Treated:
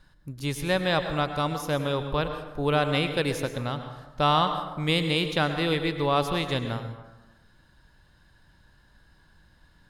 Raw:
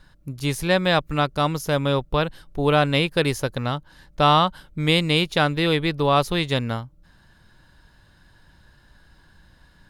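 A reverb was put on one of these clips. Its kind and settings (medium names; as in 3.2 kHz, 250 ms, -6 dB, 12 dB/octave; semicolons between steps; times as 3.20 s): plate-style reverb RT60 1.1 s, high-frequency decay 0.55×, pre-delay 90 ms, DRR 7.5 dB; trim -5.5 dB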